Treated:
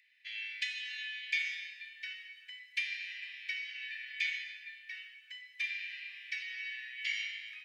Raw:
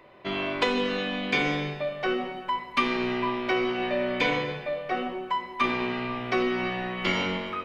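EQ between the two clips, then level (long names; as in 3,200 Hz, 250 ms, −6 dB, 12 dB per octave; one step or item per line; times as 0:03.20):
Chebyshev high-pass with heavy ripple 1,700 Hz, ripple 3 dB
−5.0 dB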